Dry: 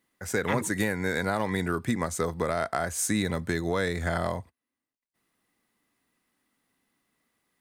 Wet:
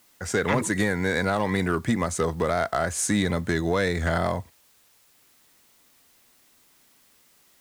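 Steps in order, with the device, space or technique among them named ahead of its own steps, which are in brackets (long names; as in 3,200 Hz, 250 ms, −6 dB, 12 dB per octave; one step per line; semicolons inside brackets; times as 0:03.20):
compact cassette (soft clipping −18 dBFS, distortion −18 dB; low-pass filter 9,000 Hz 12 dB per octave; tape wow and flutter; white noise bed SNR 33 dB)
level +5 dB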